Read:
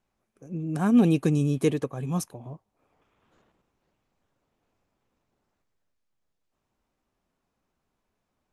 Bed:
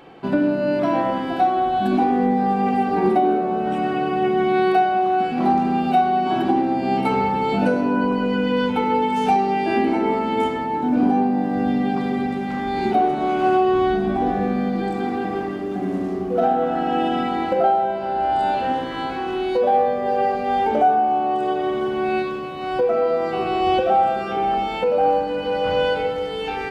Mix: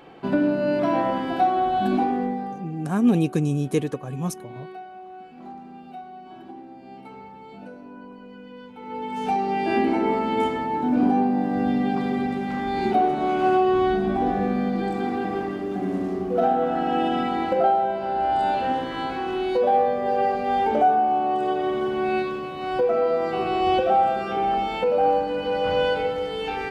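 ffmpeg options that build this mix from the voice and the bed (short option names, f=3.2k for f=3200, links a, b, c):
-filter_complex "[0:a]adelay=2100,volume=0.5dB[a];[1:a]volume=18dB,afade=t=out:st=1.85:d=0.82:silence=0.1,afade=t=in:st=8.77:d=0.96:silence=0.1[b];[a][b]amix=inputs=2:normalize=0"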